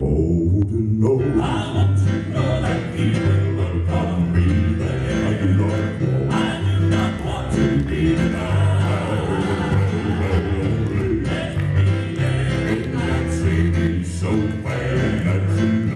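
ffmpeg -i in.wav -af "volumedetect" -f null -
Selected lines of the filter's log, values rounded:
mean_volume: -18.7 dB
max_volume: -7.1 dB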